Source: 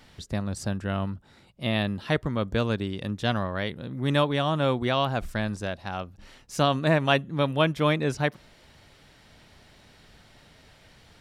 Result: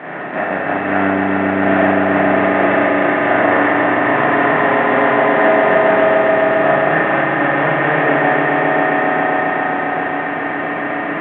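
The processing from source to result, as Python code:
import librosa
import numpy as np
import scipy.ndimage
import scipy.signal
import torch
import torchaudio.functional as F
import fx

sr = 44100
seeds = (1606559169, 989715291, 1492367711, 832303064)

p1 = fx.bin_compress(x, sr, power=0.2)
p2 = fx.level_steps(p1, sr, step_db=9)
p3 = fx.cabinet(p2, sr, low_hz=170.0, low_slope=24, high_hz=2100.0, hz=(200.0, 300.0, 510.0, 750.0, 1100.0, 1900.0), db=(-5, 4, -5, 6, -4, 8))
p4 = p3 + fx.echo_swell(p3, sr, ms=134, loudest=5, wet_db=-6.0, dry=0)
p5 = fx.rev_spring(p4, sr, rt60_s=1.0, pass_ms=(31, 42), chirp_ms=60, drr_db=-7.0)
y = F.gain(torch.from_numpy(p5), -6.0).numpy()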